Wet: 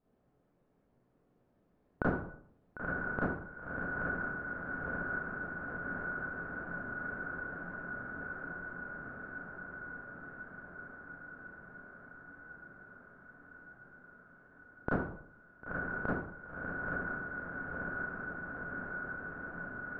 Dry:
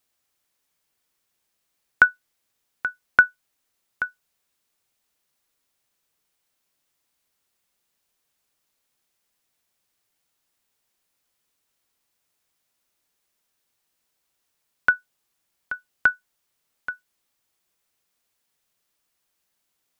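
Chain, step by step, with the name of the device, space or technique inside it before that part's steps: diffused feedback echo 1.015 s, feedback 72%, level -7.5 dB; television next door (compressor 4:1, threshold -36 dBFS, peak gain reduction 22 dB; LPF 480 Hz 12 dB/oct; reverb RT60 0.60 s, pre-delay 28 ms, DRR -8.5 dB); gain +10 dB

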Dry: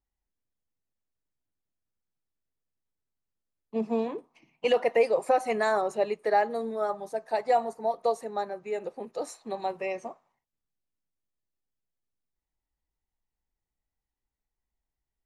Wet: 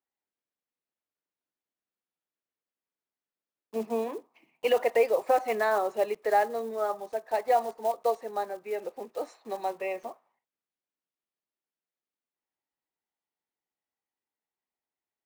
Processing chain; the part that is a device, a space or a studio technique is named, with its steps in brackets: early digital voice recorder (BPF 290–3400 Hz; block floating point 5-bit)

